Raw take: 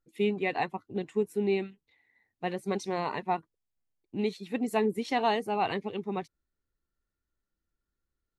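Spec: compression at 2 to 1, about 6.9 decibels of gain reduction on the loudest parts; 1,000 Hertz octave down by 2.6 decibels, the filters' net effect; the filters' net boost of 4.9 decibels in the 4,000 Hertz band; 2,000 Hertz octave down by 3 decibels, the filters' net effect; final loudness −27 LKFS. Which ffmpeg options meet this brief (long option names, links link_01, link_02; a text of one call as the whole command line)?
ffmpeg -i in.wav -af "equalizer=frequency=1000:width_type=o:gain=-3,equalizer=frequency=2000:width_type=o:gain=-6,equalizer=frequency=4000:width_type=o:gain=9,acompressor=threshold=-36dB:ratio=2,volume=10.5dB" out.wav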